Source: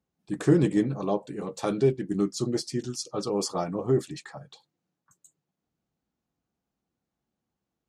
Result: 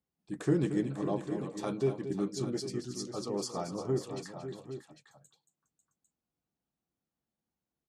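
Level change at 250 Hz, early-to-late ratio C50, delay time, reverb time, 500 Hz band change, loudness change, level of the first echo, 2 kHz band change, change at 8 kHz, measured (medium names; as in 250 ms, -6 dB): -6.5 dB, no reverb, 227 ms, no reverb, -6.5 dB, -7.0 dB, -11.0 dB, -6.5 dB, -6.5 dB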